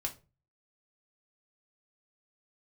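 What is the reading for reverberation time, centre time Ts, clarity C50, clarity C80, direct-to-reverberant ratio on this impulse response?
0.30 s, 9 ms, 15.0 dB, 22.5 dB, 1.5 dB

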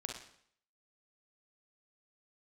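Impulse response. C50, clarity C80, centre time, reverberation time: 3.0 dB, 8.5 dB, 34 ms, 0.65 s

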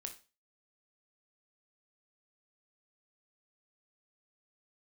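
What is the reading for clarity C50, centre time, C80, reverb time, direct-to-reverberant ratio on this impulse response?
11.5 dB, 12 ms, 17.5 dB, 0.30 s, 4.5 dB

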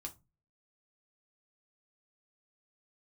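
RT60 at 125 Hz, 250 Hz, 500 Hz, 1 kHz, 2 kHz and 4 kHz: 0.50, 0.45, 0.25, 0.25, 0.20, 0.15 seconds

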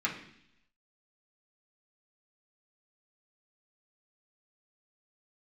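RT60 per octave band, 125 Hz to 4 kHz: 0.90, 0.85, 0.70, 0.65, 0.85, 0.95 seconds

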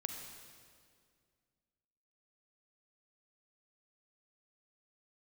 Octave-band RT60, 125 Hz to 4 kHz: 2.5, 2.5, 2.3, 1.9, 1.8, 1.8 seconds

